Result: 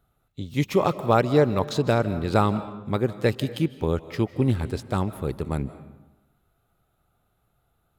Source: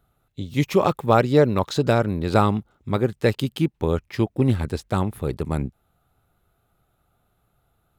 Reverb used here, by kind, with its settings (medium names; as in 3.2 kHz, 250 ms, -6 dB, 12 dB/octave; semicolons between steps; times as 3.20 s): algorithmic reverb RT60 1 s, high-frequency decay 0.7×, pre-delay 115 ms, DRR 14 dB; trim -2.5 dB